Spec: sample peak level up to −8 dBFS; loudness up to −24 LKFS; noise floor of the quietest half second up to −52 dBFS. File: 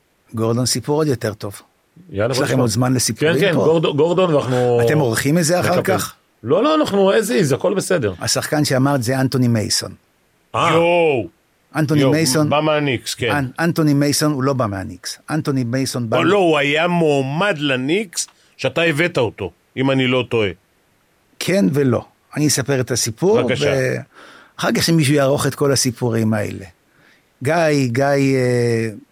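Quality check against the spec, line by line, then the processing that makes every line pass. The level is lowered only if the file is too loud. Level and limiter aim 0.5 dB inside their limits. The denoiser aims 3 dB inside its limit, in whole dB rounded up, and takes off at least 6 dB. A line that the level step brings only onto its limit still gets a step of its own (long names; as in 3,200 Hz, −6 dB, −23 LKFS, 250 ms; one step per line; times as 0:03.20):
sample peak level −6.0 dBFS: out of spec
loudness −17.0 LKFS: out of spec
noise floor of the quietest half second −60 dBFS: in spec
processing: level −7.5 dB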